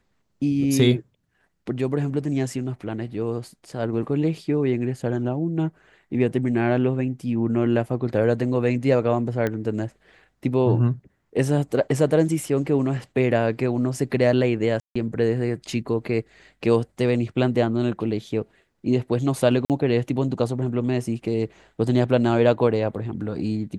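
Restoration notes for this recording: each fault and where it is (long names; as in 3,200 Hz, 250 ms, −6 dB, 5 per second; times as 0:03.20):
0:09.47: click −13 dBFS
0:14.80–0:14.96: drop-out 155 ms
0:19.65–0:19.70: drop-out 48 ms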